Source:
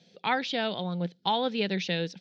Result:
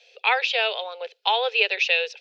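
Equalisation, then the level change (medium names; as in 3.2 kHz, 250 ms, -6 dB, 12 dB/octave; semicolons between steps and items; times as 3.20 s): steep high-pass 420 Hz 96 dB/octave; peaking EQ 2.6 kHz +15 dB 0.3 oct; +4.5 dB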